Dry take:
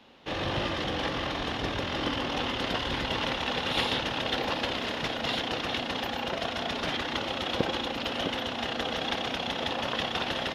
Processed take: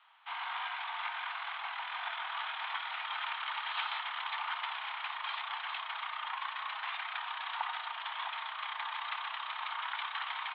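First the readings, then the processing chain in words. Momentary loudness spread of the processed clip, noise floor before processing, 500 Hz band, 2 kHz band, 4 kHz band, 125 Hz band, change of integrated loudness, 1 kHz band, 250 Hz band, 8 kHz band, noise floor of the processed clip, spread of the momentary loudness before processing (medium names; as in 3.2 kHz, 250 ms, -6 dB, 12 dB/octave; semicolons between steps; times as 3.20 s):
3 LU, -35 dBFS, -25.0 dB, -4.5 dB, -10.0 dB, under -40 dB, -7.5 dB, -3.5 dB, under -40 dB, under -35 dB, -43 dBFS, 2 LU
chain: mistuned SSB +400 Hz 430–2800 Hz; trim -5 dB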